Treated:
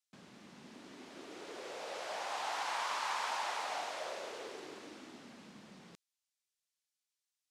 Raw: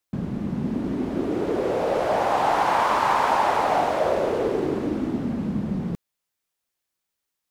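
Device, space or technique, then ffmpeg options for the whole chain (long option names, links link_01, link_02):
piezo pickup straight into a mixer: -af "lowpass=6300,aderivative"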